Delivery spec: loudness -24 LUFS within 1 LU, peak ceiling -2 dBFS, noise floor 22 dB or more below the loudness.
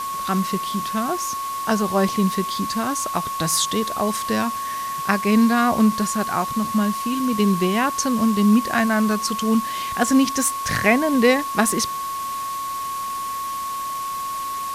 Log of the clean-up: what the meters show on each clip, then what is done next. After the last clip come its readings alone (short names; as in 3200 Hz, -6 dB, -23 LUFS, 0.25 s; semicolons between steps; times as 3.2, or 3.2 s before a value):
steady tone 1100 Hz; tone level -25 dBFS; noise floor -28 dBFS; noise floor target -43 dBFS; loudness -21.0 LUFS; peak -2.5 dBFS; loudness target -24.0 LUFS
-> notch 1100 Hz, Q 30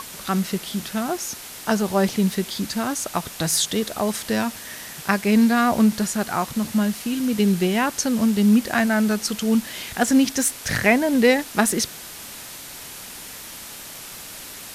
steady tone none; noise floor -38 dBFS; noise floor target -44 dBFS
-> noise print and reduce 6 dB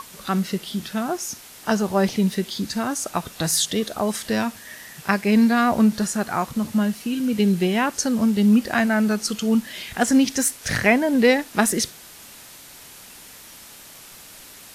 noise floor -44 dBFS; loudness -21.5 LUFS; peak -3.0 dBFS; loudness target -24.0 LUFS
-> gain -2.5 dB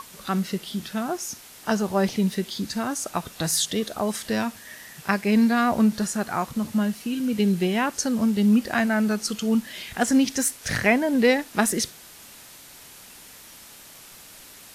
loudness -24.0 LUFS; peak -5.5 dBFS; noise floor -46 dBFS